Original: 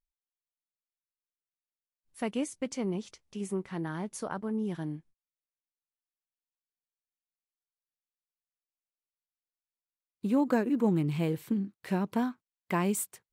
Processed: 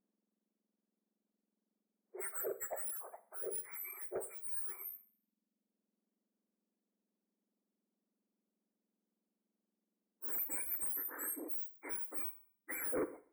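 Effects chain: spectrum inverted on a logarithmic axis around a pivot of 2 kHz; reverb removal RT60 1.2 s; saturation -33.5 dBFS, distortion -8 dB; brick-wall FIR band-stop 2.4–7.6 kHz; Schroeder reverb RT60 0.48 s, combs from 33 ms, DRR 12.5 dB

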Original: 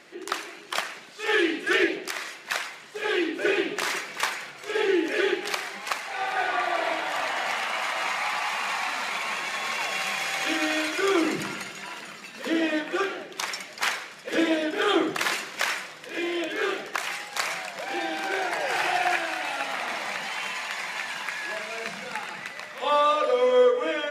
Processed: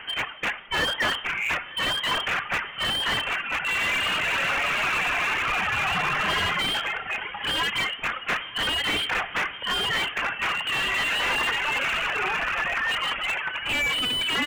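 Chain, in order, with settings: reverb removal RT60 1.6 s; steep high-pass 230 Hz 72 dB/octave; spectral replace 2.26–2.49 s, 640–1400 Hz both; overdrive pedal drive 22 dB, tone 1.4 kHz, clips at -11 dBFS; frequency inversion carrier 3.5 kHz; time stretch by phase-locked vocoder 0.6×; feedback delay 908 ms, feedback 58%, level -23 dB; on a send at -16.5 dB: reverberation, pre-delay 3 ms; on the sum: slew-rate limiter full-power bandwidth 120 Hz; trim +2.5 dB

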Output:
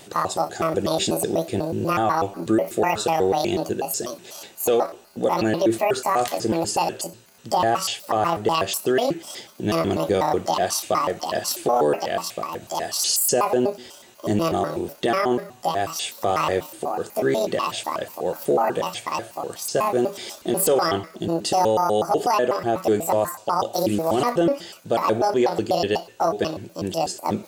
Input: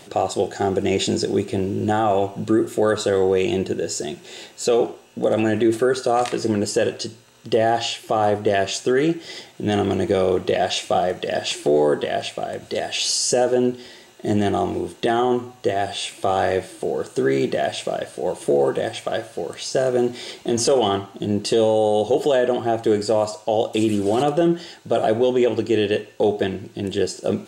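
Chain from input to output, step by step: pitch shift switched off and on +8.5 st, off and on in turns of 123 ms; treble shelf 9.2 kHz +6.5 dB; trim -1.5 dB

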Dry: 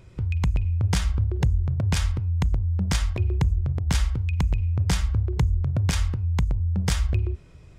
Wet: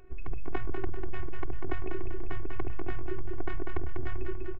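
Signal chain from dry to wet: low-pass 2.1 kHz 24 dB/octave; peaking EQ 320 Hz +4.5 dB 1.2 oct; robot voice 369 Hz; speakerphone echo 340 ms, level -14 dB; granular stretch 0.59×, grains 50 ms; on a send: feedback delay 195 ms, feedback 50%, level -5.5 dB; on the sum: compression, threshold -20 dBFS, peak gain reduction 4.5 dB

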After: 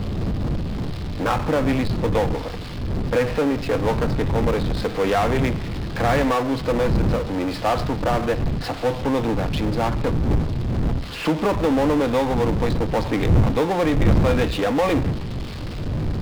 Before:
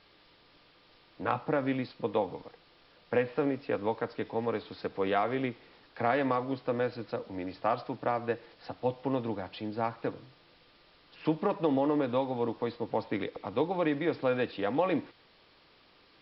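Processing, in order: wind noise 150 Hz -32 dBFS; power-law waveshaper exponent 0.5

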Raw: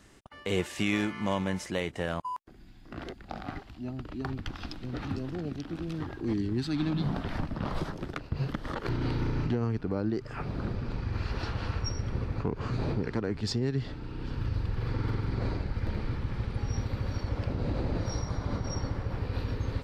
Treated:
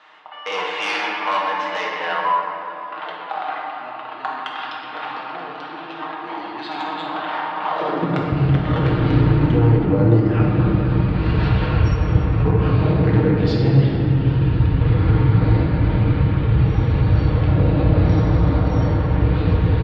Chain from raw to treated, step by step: Chebyshev low-pass 3.4 kHz, order 3; comb 6.5 ms, depth 55%; in parallel at -6 dB: sine folder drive 7 dB, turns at -16 dBFS; on the sum: high-pass sweep 920 Hz -> 66 Hz, 7.67–8.34 s; reverberation RT60 3.3 s, pre-delay 6 ms, DRR -3 dB

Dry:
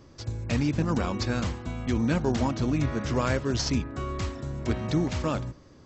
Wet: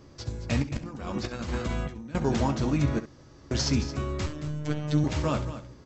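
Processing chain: 4.26–5.04 s: robot voice 150 Hz; delay 222 ms -12.5 dB; 0.62–2.15 s: compressor with a negative ratio -32 dBFS, ratio -0.5; 2.99–3.51 s: room tone; early reflections 14 ms -9 dB, 67 ms -13 dB

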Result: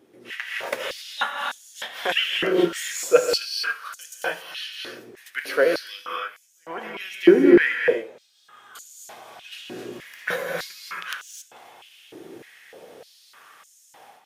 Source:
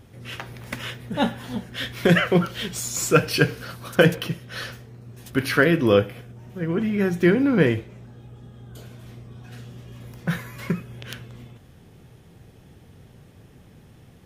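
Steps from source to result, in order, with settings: gated-style reverb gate 300 ms rising, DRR 1 dB; level rider gain up to 13 dB; step-sequenced high-pass 3.3 Hz 340–6800 Hz; trim -8 dB

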